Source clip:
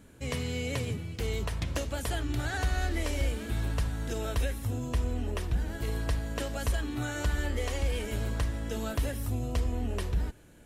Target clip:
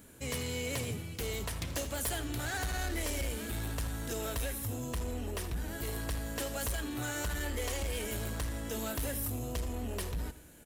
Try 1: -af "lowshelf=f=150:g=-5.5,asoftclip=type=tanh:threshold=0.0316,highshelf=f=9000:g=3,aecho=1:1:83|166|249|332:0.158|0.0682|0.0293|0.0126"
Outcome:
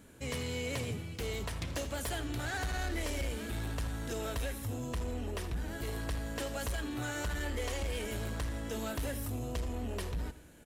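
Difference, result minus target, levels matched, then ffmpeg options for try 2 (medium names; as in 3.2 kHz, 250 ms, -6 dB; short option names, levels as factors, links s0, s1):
8 kHz band -4.0 dB
-af "lowshelf=f=150:g=-5.5,asoftclip=type=tanh:threshold=0.0316,highshelf=f=9000:g=15,aecho=1:1:83|166|249|332:0.158|0.0682|0.0293|0.0126"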